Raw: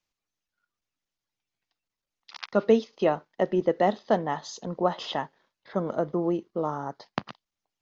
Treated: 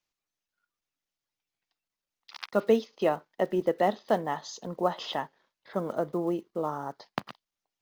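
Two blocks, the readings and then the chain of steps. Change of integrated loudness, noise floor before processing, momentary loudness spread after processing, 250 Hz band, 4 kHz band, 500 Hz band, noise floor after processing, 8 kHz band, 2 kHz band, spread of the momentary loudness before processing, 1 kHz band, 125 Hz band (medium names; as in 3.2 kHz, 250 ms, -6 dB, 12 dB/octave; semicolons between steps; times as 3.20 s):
-2.5 dB, under -85 dBFS, 13 LU, -3.5 dB, -1.5 dB, -2.5 dB, under -85 dBFS, no reading, -1.5 dB, 13 LU, -2.0 dB, -4.5 dB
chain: block-companded coder 7-bit; bass shelf 230 Hz -4.5 dB; trim -1.5 dB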